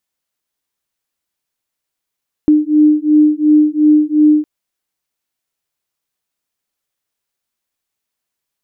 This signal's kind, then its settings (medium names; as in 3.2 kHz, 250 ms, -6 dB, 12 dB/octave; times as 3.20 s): beating tones 301 Hz, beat 2.8 Hz, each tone -10.5 dBFS 1.96 s